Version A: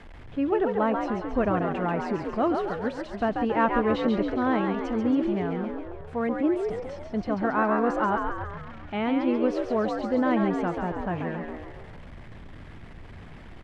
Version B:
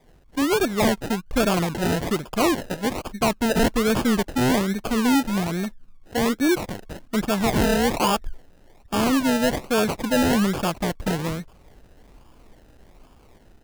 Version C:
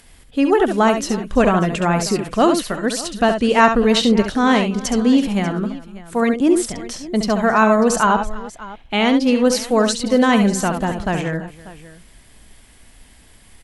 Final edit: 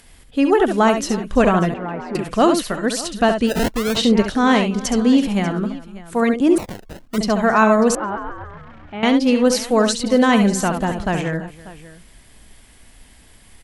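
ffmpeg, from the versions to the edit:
-filter_complex "[0:a]asplit=2[s0][s1];[1:a]asplit=2[s2][s3];[2:a]asplit=5[s4][s5][s6][s7][s8];[s4]atrim=end=1.742[s9];[s0]atrim=start=1.738:end=2.152[s10];[s5]atrim=start=2.148:end=3.52[s11];[s2]atrim=start=3.46:end=4[s12];[s6]atrim=start=3.94:end=6.582[s13];[s3]atrim=start=6.578:end=7.182[s14];[s7]atrim=start=7.178:end=7.952[s15];[s1]atrim=start=7.948:end=9.032[s16];[s8]atrim=start=9.028[s17];[s9][s10]acrossfade=d=0.004:c1=hsin:c2=hsin[s18];[s18][s11]acrossfade=d=0.004:c1=hsin:c2=hsin[s19];[s19][s12]acrossfade=d=0.06:c1=tri:c2=tri[s20];[s20][s13]acrossfade=d=0.06:c1=tri:c2=tri[s21];[s21][s14]acrossfade=d=0.004:c1=hsin:c2=hsin[s22];[s22][s15]acrossfade=d=0.004:c1=hsin:c2=hsin[s23];[s23][s16]acrossfade=d=0.004:c1=hsin:c2=hsin[s24];[s24][s17]acrossfade=d=0.004:c1=hsin:c2=hsin"

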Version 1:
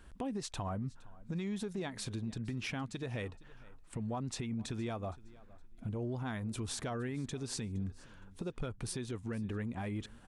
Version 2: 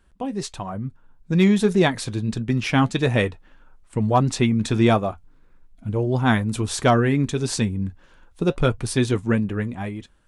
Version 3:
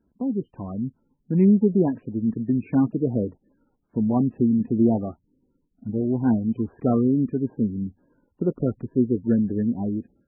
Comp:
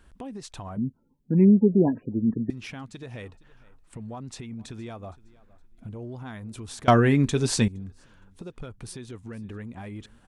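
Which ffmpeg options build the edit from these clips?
-filter_complex "[0:a]asplit=3[s0][s1][s2];[s0]atrim=end=0.772[s3];[2:a]atrim=start=0.768:end=2.502[s4];[s1]atrim=start=2.498:end=6.882[s5];[1:a]atrim=start=6.878:end=7.682[s6];[s2]atrim=start=7.678[s7];[s3][s4]acrossfade=d=0.004:c1=hsin:c2=hsin[s8];[s8][s5]acrossfade=d=0.004:c1=hsin:c2=hsin[s9];[s9][s6]acrossfade=d=0.004:c1=hsin:c2=hsin[s10];[s10][s7]acrossfade=d=0.004:c1=hsin:c2=hsin"

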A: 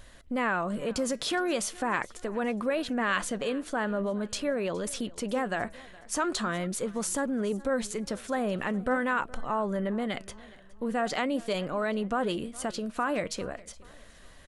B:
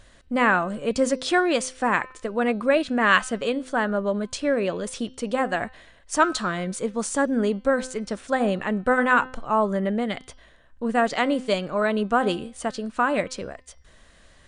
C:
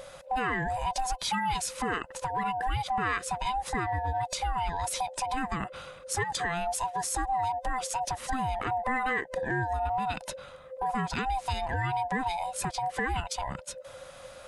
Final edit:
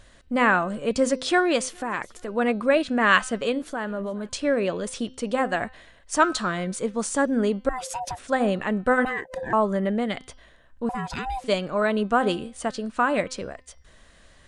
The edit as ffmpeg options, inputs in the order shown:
-filter_complex "[0:a]asplit=2[s0][s1];[2:a]asplit=3[s2][s3][s4];[1:a]asplit=6[s5][s6][s7][s8][s9][s10];[s5]atrim=end=1.692[s11];[s0]atrim=start=1.688:end=2.282[s12];[s6]atrim=start=2.278:end=3.622[s13];[s1]atrim=start=3.618:end=4.292[s14];[s7]atrim=start=4.288:end=7.692[s15];[s2]atrim=start=7.688:end=8.192[s16];[s8]atrim=start=8.188:end=9.052[s17];[s3]atrim=start=9.048:end=9.532[s18];[s9]atrim=start=9.528:end=10.892[s19];[s4]atrim=start=10.888:end=11.442[s20];[s10]atrim=start=11.438[s21];[s11][s12]acrossfade=d=0.004:c1=hsin:c2=hsin[s22];[s22][s13]acrossfade=d=0.004:c1=hsin:c2=hsin[s23];[s23][s14]acrossfade=d=0.004:c1=hsin:c2=hsin[s24];[s24][s15]acrossfade=d=0.004:c1=hsin:c2=hsin[s25];[s25][s16]acrossfade=d=0.004:c1=hsin:c2=hsin[s26];[s26][s17]acrossfade=d=0.004:c1=hsin:c2=hsin[s27];[s27][s18]acrossfade=d=0.004:c1=hsin:c2=hsin[s28];[s28][s19]acrossfade=d=0.004:c1=hsin:c2=hsin[s29];[s29][s20]acrossfade=d=0.004:c1=hsin:c2=hsin[s30];[s30][s21]acrossfade=d=0.004:c1=hsin:c2=hsin"

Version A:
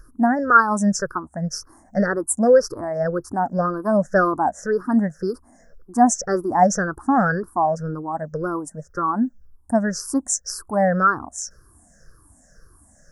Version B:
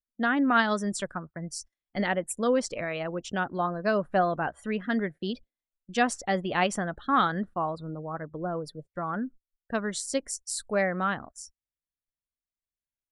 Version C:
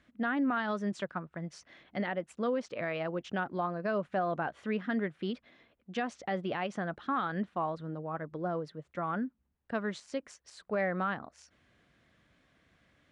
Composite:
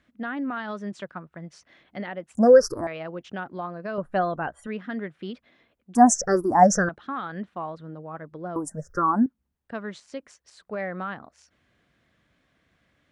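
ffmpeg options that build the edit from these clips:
-filter_complex "[0:a]asplit=3[s0][s1][s2];[2:a]asplit=5[s3][s4][s5][s6][s7];[s3]atrim=end=2.352[s8];[s0]atrim=start=2.348:end=2.872[s9];[s4]atrim=start=2.868:end=3.982[s10];[1:a]atrim=start=3.978:end=4.672[s11];[s5]atrim=start=4.668:end=5.952[s12];[s1]atrim=start=5.948:end=6.892[s13];[s6]atrim=start=6.888:end=8.562[s14];[s2]atrim=start=8.558:end=9.262[s15];[s7]atrim=start=9.258[s16];[s8][s9]acrossfade=d=0.004:c1=hsin:c2=hsin[s17];[s17][s10]acrossfade=d=0.004:c1=hsin:c2=hsin[s18];[s18][s11]acrossfade=d=0.004:c1=hsin:c2=hsin[s19];[s19][s12]acrossfade=d=0.004:c1=hsin:c2=hsin[s20];[s20][s13]acrossfade=d=0.004:c1=hsin:c2=hsin[s21];[s21][s14]acrossfade=d=0.004:c1=hsin:c2=hsin[s22];[s22][s15]acrossfade=d=0.004:c1=hsin:c2=hsin[s23];[s23][s16]acrossfade=d=0.004:c1=hsin:c2=hsin"

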